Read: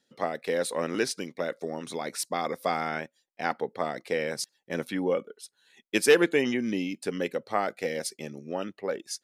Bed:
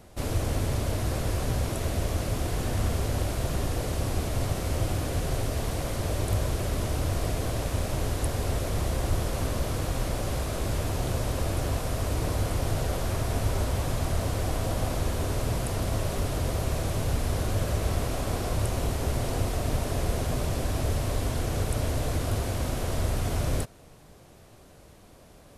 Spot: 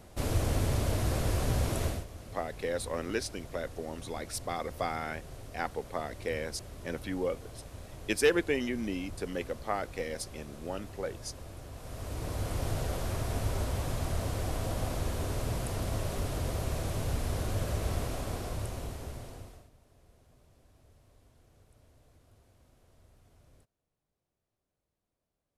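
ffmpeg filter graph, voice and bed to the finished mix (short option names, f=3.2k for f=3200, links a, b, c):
-filter_complex "[0:a]adelay=2150,volume=-5.5dB[a];[1:a]volume=11dB,afade=t=out:st=1.84:d=0.21:silence=0.158489,afade=t=in:st=11.73:d=0.9:silence=0.237137,afade=t=out:st=17.98:d=1.72:silence=0.0334965[b];[a][b]amix=inputs=2:normalize=0"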